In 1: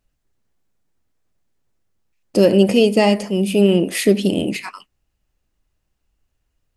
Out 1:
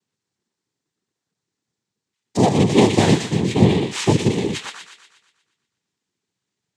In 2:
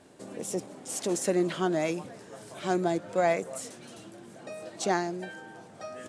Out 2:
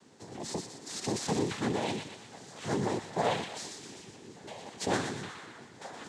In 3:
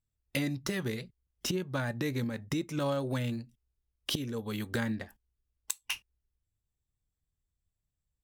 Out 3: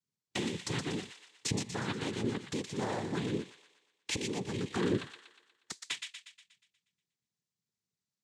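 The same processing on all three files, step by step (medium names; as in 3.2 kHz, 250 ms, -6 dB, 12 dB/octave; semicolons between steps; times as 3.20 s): tracing distortion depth 0.1 ms; treble shelf 3.2 kHz +8.5 dB; small resonant body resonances 220/1800 Hz, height 9 dB; noise-vocoded speech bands 6; on a send: feedback echo behind a high-pass 120 ms, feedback 51%, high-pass 1.5 kHz, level -5 dB; on the sum: trim -5.5 dB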